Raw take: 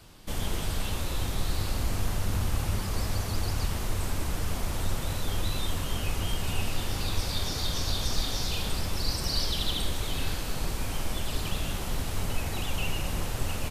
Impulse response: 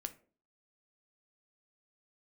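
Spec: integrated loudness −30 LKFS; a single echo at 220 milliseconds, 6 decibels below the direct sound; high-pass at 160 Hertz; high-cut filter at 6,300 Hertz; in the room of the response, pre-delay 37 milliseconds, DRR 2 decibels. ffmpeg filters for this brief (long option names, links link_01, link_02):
-filter_complex "[0:a]highpass=160,lowpass=6300,aecho=1:1:220:0.501,asplit=2[link_01][link_02];[1:a]atrim=start_sample=2205,adelay=37[link_03];[link_02][link_03]afir=irnorm=-1:irlink=0,volume=0.5dB[link_04];[link_01][link_04]amix=inputs=2:normalize=0,volume=2dB"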